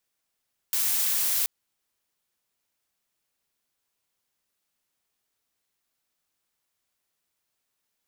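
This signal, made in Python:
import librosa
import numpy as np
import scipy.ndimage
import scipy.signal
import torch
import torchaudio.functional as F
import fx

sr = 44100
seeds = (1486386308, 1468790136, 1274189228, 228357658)

y = fx.noise_colour(sr, seeds[0], length_s=0.73, colour='blue', level_db=-25.0)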